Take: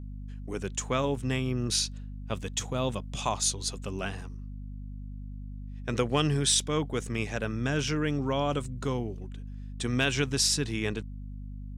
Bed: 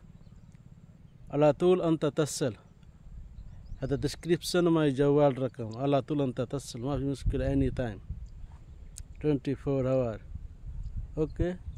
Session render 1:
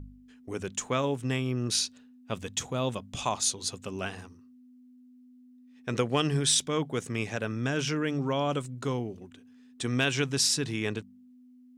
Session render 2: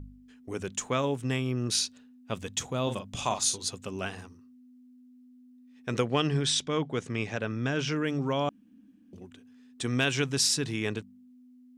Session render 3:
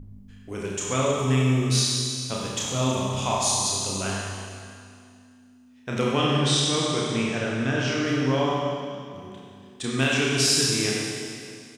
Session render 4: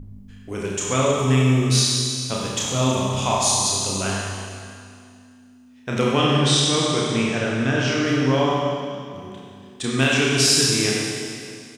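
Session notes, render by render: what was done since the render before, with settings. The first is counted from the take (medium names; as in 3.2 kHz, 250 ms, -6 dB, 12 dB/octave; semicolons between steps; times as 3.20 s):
de-hum 50 Hz, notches 4
2.83–3.58 s: doubling 41 ms -7.5 dB; 6.05–7.92 s: low-pass 5.6 kHz; 8.49–9.13 s: room tone
doubling 30 ms -4 dB; Schroeder reverb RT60 2.3 s, combs from 31 ms, DRR -3 dB
trim +4 dB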